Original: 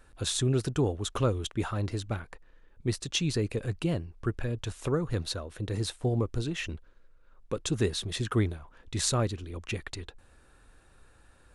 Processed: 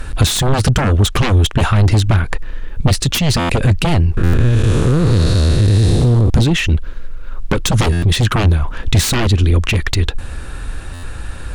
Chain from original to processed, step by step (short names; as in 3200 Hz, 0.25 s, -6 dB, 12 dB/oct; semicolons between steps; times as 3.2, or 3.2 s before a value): 4.17–6.3 time blur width 0.392 s; sine folder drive 19 dB, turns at -9 dBFS; EQ curve 540 Hz 0 dB, 2900 Hz +6 dB, 6900 Hz +3 dB; compressor, threshold -17 dBFS, peak gain reduction 10 dB; low shelf 220 Hz +12 dB; stuck buffer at 3.39/4.23/7.92/10.93, samples 512, times 8